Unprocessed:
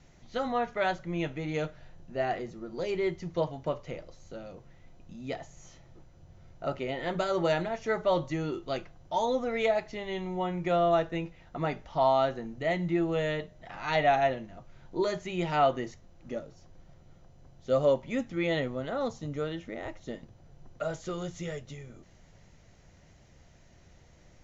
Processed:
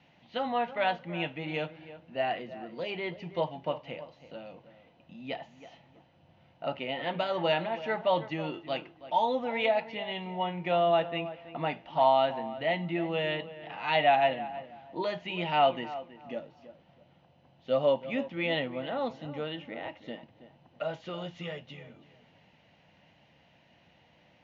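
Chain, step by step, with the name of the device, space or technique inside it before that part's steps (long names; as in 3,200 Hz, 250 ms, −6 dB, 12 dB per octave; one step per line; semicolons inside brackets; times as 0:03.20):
0:02.29–0:02.86: notch filter 830 Hz, Q 5.1
tape delay 325 ms, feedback 26%, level −13 dB, low-pass 1,800 Hz
kitchen radio (loudspeaker in its box 180–4,000 Hz, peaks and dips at 390 Hz −9 dB, 870 Hz +5 dB, 1,300 Hz −5 dB, 2,800 Hz +9 dB)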